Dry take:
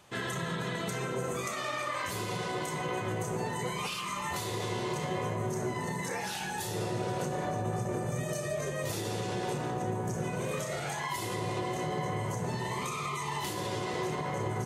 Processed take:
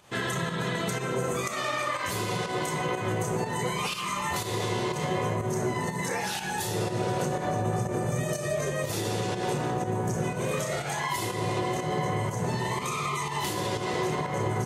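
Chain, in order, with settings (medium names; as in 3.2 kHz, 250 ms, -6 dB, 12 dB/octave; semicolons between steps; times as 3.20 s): volume shaper 122 bpm, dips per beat 1, -8 dB, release 136 ms; trim +5 dB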